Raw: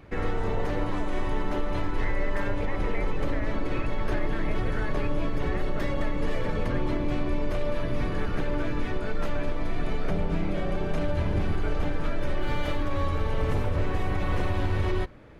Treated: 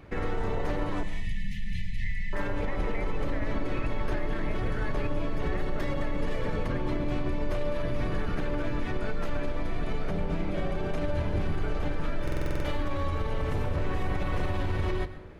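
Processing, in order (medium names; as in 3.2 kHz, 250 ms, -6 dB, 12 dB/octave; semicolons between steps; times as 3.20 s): peak limiter -20.5 dBFS, peak gain reduction 4.5 dB; 1.03–2.33 s: brick-wall FIR band-stop 230–1700 Hz; reverberation RT60 0.65 s, pre-delay 104 ms, DRR 12.5 dB; buffer glitch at 12.23 s, samples 2048, times 8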